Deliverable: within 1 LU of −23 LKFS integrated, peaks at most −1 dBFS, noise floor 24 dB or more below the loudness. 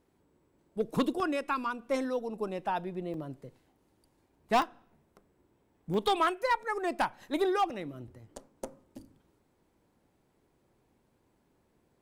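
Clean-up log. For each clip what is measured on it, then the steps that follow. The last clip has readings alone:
share of clipped samples 0.3%; peaks flattened at −20.5 dBFS; number of dropouts 5; longest dropout 1.4 ms; integrated loudness −31.5 LKFS; sample peak −20.5 dBFS; target loudness −23.0 LKFS
→ clipped peaks rebuilt −20.5 dBFS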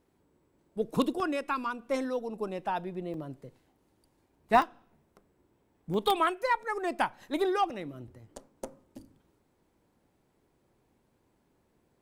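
share of clipped samples 0.0%; number of dropouts 5; longest dropout 1.4 ms
→ repair the gap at 0:01.20/0:03.14/0:04.62/0:05.94/0:07.70, 1.4 ms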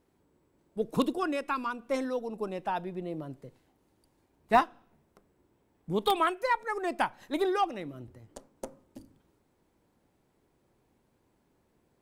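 number of dropouts 0; integrated loudness −31.0 LKFS; sample peak −11.5 dBFS; target loudness −23.0 LKFS
→ level +8 dB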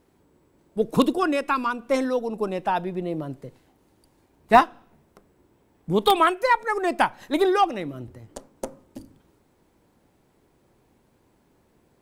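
integrated loudness −23.0 LKFS; sample peak −3.5 dBFS; background noise floor −64 dBFS

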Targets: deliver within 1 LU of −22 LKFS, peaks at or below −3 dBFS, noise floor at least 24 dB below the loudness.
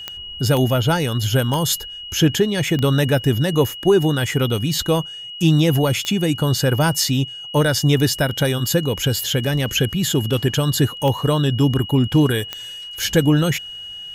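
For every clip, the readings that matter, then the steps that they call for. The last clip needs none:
number of clicks 7; interfering tone 2,900 Hz; level of the tone −31 dBFS; integrated loudness −18.5 LKFS; sample peak −4.0 dBFS; target loudness −22.0 LKFS
→ click removal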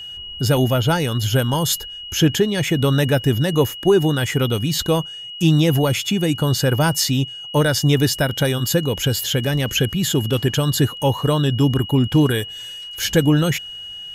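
number of clicks 0; interfering tone 2,900 Hz; level of the tone −31 dBFS
→ notch filter 2,900 Hz, Q 30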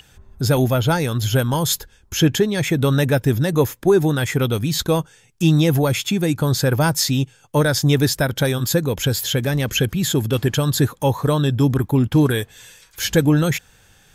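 interfering tone none found; integrated loudness −19.0 LKFS; sample peak −4.0 dBFS; target loudness −22.0 LKFS
→ level −3 dB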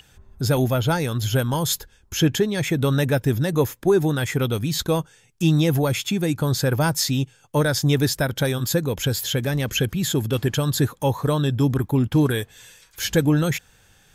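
integrated loudness −22.0 LKFS; sample peak −7.0 dBFS; background noise floor −56 dBFS

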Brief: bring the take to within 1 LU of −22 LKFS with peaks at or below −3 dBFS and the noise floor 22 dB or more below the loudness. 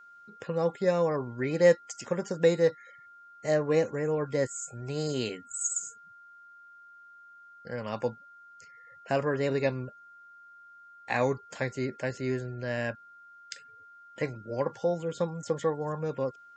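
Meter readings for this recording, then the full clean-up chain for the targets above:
interfering tone 1,400 Hz; level of the tone −50 dBFS; integrated loudness −30.0 LKFS; sample peak −9.0 dBFS; target loudness −22.0 LKFS
→ notch filter 1,400 Hz, Q 30
level +8 dB
brickwall limiter −3 dBFS

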